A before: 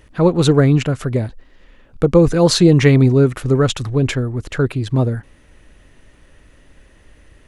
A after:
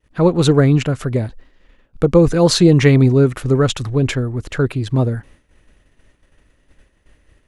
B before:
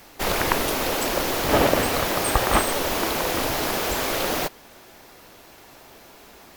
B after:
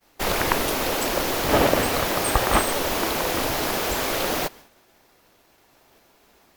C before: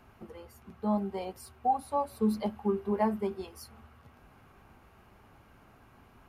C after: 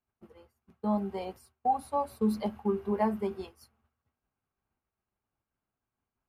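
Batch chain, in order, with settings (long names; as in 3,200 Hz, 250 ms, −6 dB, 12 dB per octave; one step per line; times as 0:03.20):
downward expander −39 dBFS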